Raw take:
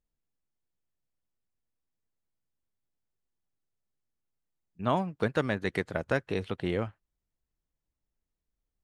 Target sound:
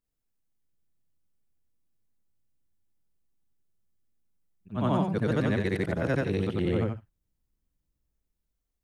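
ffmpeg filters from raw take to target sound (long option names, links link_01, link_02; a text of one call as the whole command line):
ffmpeg -i in.wav -filter_complex "[0:a]afftfilt=real='re':imag='-im':win_size=8192:overlap=0.75,highshelf=frequency=8400:gain=6,acrossover=split=360|830[link_01][link_02][link_03];[link_01]dynaudnorm=framelen=150:gausssize=9:maxgain=8dB[link_04];[link_04][link_02][link_03]amix=inputs=3:normalize=0,alimiter=limit=-22dB:level=0:latency=1:release=24,volume=4.5dB" out.wav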